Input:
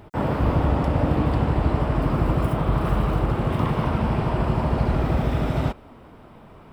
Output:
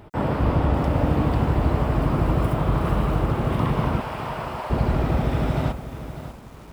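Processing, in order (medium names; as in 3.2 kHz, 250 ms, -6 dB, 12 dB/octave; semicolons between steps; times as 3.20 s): 4.00–4.70 s: Bessel high-pass 680 Hz, order 8; bit-crushed delay 597 ms, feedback 35%, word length 7-bit, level -11.5 dB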